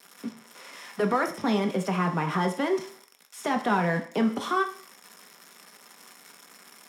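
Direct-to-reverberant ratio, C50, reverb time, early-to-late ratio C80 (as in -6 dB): 4.0 dB, 10.5 dB, 0.50 s, 15.0 dB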